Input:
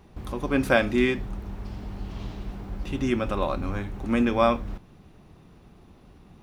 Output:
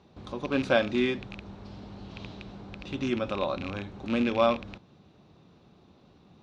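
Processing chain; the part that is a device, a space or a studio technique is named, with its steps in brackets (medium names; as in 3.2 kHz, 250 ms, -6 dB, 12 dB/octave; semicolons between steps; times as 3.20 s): car door speaker with a rattle (rattle on loud lows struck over -27 dBFS, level -22 dBFS; cabinet simulation 100–6600 Hz, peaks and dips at 560 Hz +3 dB, 1.9 kHz -4 dB, 3.9 kHz +7 dB); trim -4 dB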